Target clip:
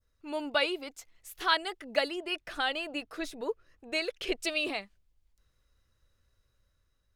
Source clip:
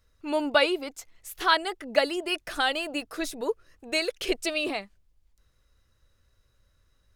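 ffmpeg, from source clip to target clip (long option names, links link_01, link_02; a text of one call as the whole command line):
ffmpeg -i in.wav -filter_complex "[0:a]adynamicequalizer=threshold=0.0126:dfrequency=3000:dqfactor=0.75:tfrequency=3000:tqfactor=0.75:attack=5:release=100:ratio=0.375:range=2:mode=boostabove:tftype=bell,dynaudnorm=framelen=300:gausssize=5:maxgain=3.5dB,asettb=1/sr,asplit=3[link_01][link_02][link_03];[link_01]atrim=end=2.084[link_04];[link_02]atrim=start=2.08:end=4.4,asetpts=PTS-STARTPTS,afade=type=in:duration=0.004:curve=qsin,afade=type=out:start_time=2.316:duration=0.004:curve=qsin,highshelf=frequency=4400:gain=-8[link_05];[link_03]atrim=start=4.396[link_06];[link_04][link_05]acrossfade=duration=0.004:curve1=hsin:curve2=qsin[link_07];[link_07][link_06]acrossfade=duration=0.004:curve1=qsin:curve2=hsin,volume=-8.5dB" out.wav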